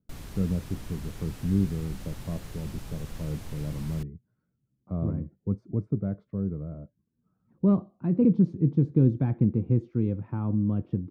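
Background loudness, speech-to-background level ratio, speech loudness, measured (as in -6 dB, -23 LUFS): -43.5 LUFS, 15.0 dB, -28.5 LUFS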